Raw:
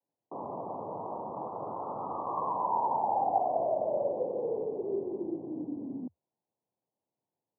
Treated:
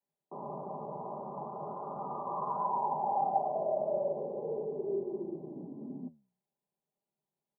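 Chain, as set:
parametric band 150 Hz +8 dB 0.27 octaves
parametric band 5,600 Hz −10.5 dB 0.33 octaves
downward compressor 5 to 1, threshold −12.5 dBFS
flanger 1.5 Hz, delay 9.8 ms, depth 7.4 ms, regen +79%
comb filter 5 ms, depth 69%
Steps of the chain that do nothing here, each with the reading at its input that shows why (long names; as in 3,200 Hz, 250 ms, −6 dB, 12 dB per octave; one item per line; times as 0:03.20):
parametric band 5,600 Hz: nothing at its input above 1,300 Hz
downward compressor, threshold −12.5 dBFS: peak of its input −15.0 dBFS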